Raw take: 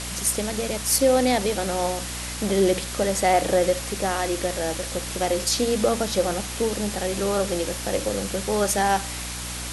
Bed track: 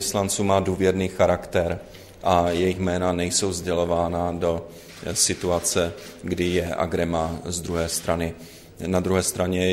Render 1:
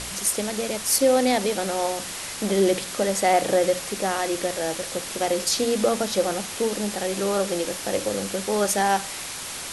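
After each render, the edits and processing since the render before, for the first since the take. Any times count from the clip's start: de-hum 60 Hz, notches 5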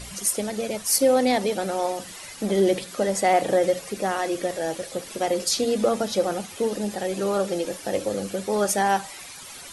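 denoiser 12 dB, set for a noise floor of -34 dBFS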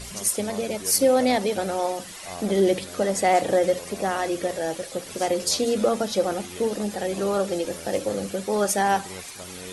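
add bed track -19 dB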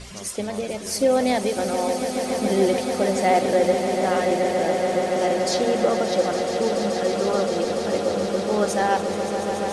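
air absorption 64 m; swelling echo 0.143 s, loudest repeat 8, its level -11.5 dB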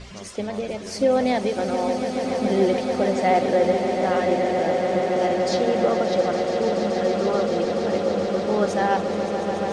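air absorption 97 m; repeats that get brighter 0.614 s, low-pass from 200 Hz, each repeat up 1 oct, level -6 dB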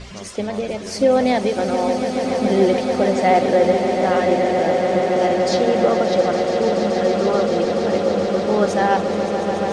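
gain +4 dB

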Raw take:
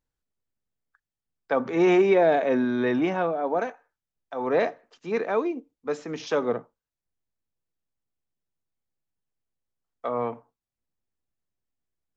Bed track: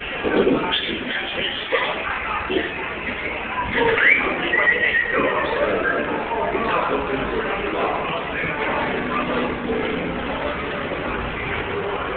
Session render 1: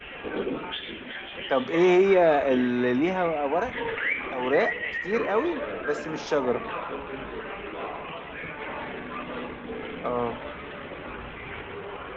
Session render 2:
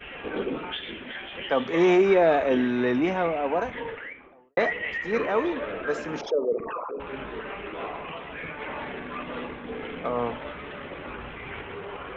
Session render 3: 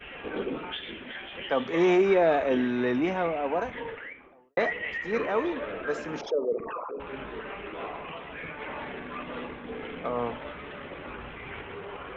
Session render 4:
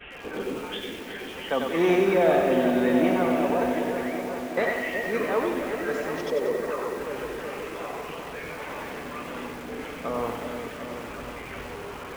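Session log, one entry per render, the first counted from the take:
add bed track -12.5 dB
3.43–4.57 studio fade out; 6.21–7 formant sharpening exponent 3
gain -2.5 dB
repeats that get brighter 0.372 s, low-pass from 750 Hz, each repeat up 1 oct, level -6 dB; lo-fi delay 93 ms, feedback 55%, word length 7-bit, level -4.5 dB

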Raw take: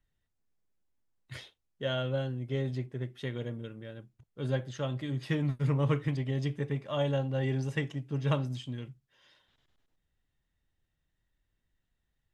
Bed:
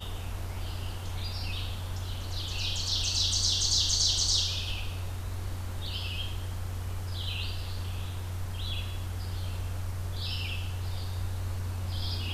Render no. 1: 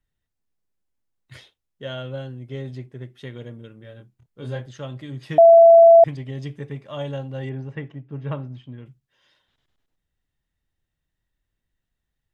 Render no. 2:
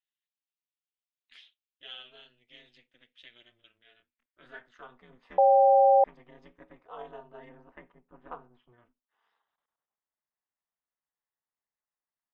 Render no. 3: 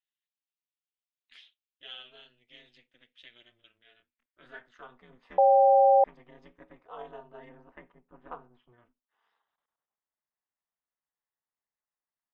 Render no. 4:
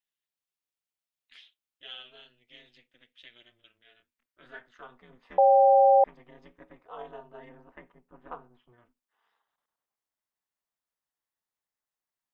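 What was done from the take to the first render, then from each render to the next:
3.81–4.66 doubler 25 ms -4 dB; 5.38–6.04 bleep 669 Hz -6 dBFS; 7.49–8.86 LPF 2000 Hz
band-pass sweep 3000 Hz -> 1000 Hz, 3.8–5.09; ring modulator 120 Hz
nothing audible
gain +1 dB

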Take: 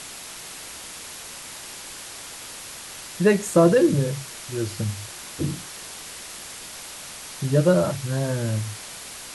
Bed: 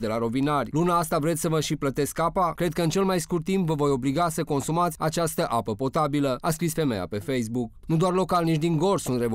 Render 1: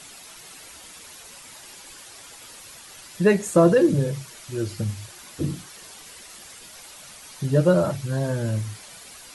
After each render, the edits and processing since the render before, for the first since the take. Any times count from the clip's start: denoiser 9 dB, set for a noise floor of -39 dBFS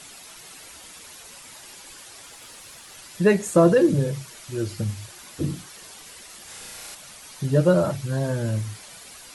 2.27–2.94 backlash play -56.5 dBFS; 6.44–6.95 flutter echo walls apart 5.9 m, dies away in 1.1 s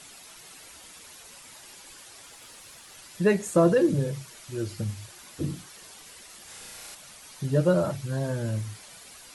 gain -4 dB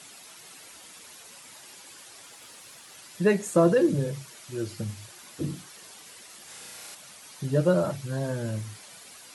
HPF 110 Hz 12 dB/oct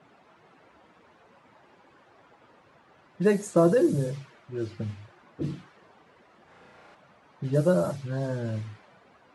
low-pass opened by the level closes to 1000 Hz, open at -20.5 dBFS; dynamic EQ 2700 Hz, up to -6 dB, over -47 dBFS, Q 1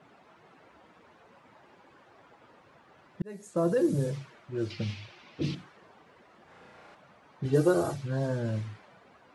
3.22–4.14 fade in; 4.7–5.55 band shelf 3600 Hz +12.5 dB; 7.45–7.94 comb 2.6 ms, depth 83%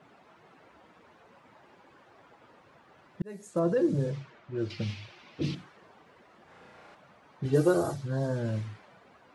3.59–4.7 air absorption 92 m; 7.77–8.36 bell 2500 Hz -7.5 dB 0.62 oct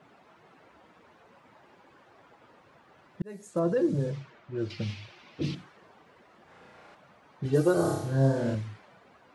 7.74–8.55 flutter echo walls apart 5.1 m, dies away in 0.72 s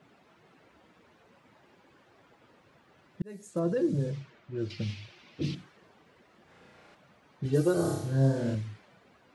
bell 930 Hz -6 dB 1.9 oct

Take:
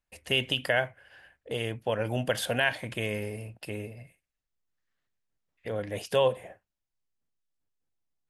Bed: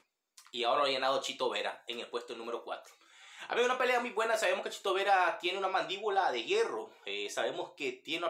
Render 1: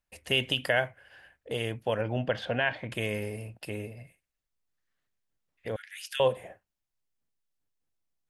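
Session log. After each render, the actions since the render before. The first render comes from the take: 2.01–2.92 air absorption 240 m; 5.76–6.2 steep high-pass 1400 Hz 72 dB/oct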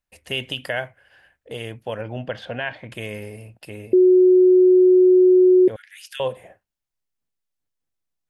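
3.93–5.68 bleep 367 Hz -9.5 dBFS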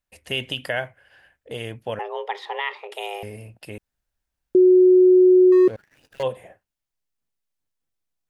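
1.99–3.23 frequency shift +290 Hz; 3.78–4.55 room tone; 5.52–6.23 median filter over 41 samples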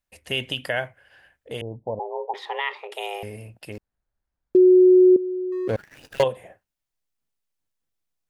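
1.61–2.34 steep low-pass 980 Hz 96 dB/oct; 3.72–4.57 median filter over 15 samples; 5.16–6.24 negative-ratio compressor -25 dBFS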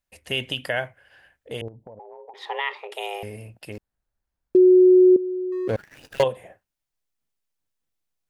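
1.68–2.41 compressor 10:1, threshold -39 dBFS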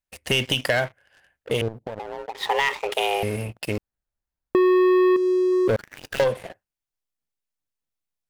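sample leveller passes 3; compressor 2.5:1, threshold -20 dBFS, peak gain reduction 6.5 dB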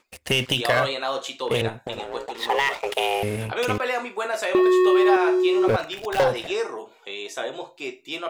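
add bed +4 dB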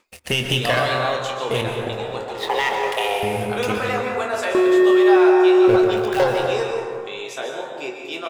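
doubler 24 ms -9 dB; plate-style reverb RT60 2 s, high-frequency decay 0.4×, pre-delay 0.11 s, DRR 2 dB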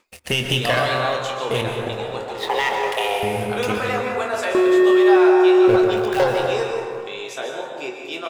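thinning echo 0.158 s, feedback 75%, level -21 dB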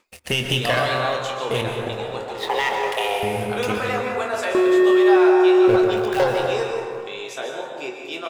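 gain -1 dB

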